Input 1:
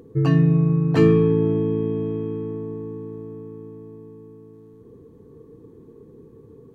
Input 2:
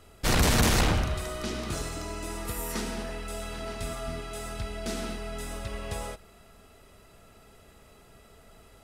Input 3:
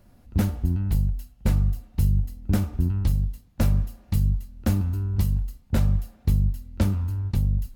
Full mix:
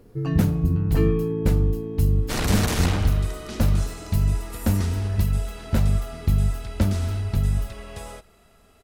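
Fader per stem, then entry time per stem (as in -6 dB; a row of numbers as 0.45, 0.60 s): -7.5, -2.0, +1.0 dB; 0.00, 2.05, 0.00 s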